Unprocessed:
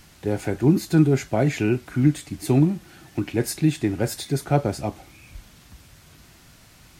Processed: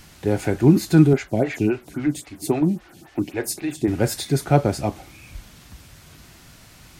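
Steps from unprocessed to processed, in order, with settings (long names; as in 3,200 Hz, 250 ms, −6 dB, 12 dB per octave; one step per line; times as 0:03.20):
0:01.13–0:03.88: phaser with staggered stages 3.7 Hz
level +3.5 dB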